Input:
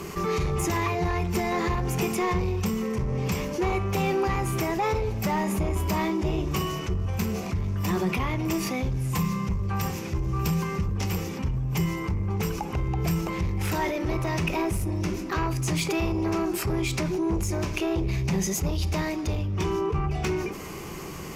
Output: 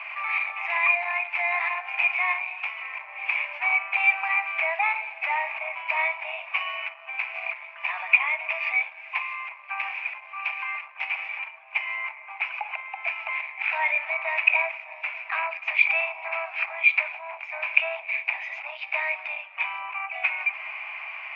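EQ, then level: rippled Chebyshev high-pass 630 Hz, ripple 3 dB; resonant low-pass 2.4 kHz, resonance Q 10; distance through air 280 m; +1.5 dB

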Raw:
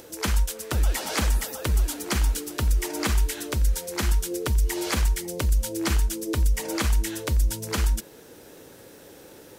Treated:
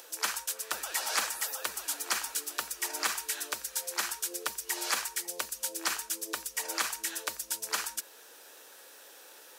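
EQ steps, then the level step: high-pass 920 Hz 12 dB/octave; band-stop 2.1 kHz, Q 13; dynamic bell 3.2 kHz, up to -4 dB, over -45 dBFS, Q 2.3; 0.0 dB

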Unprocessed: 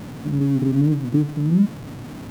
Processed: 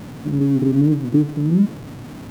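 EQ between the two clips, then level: dynamic bell 370 Hz, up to +6 dB, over -35 dBFS, Q 1.6; 0.0 dB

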